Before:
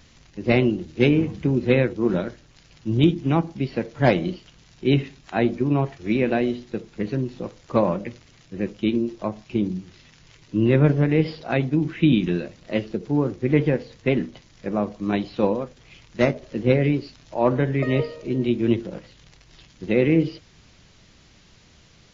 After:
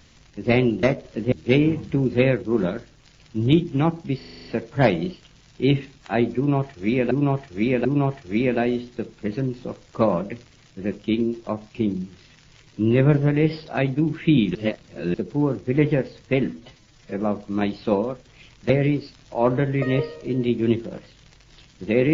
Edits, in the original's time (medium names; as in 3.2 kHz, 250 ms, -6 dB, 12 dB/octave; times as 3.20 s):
3.68 s: stutter 0.04 s, 8 plays
5.60–6.34 s: loop, 3 plays
12.30–12.89 s: reverse
14.23–14.70 s: stretch 1.5×
16.21–16.70 s: move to 0.83 s